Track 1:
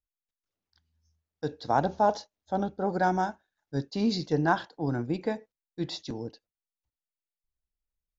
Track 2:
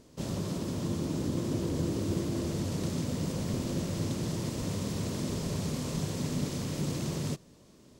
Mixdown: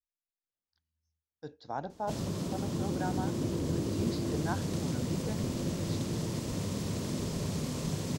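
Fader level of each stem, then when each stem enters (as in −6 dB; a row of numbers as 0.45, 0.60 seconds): −12.0, −1.0 decibels; 0.00, 1.90 seconds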